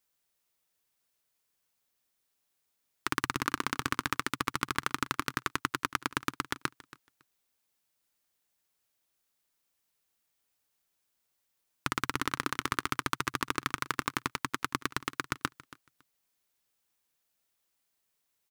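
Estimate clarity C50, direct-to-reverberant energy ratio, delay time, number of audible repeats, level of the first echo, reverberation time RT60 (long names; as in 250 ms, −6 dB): no reverb audible, no reverb audible, 278 ms, 2, −19.0 dB, no reverb audible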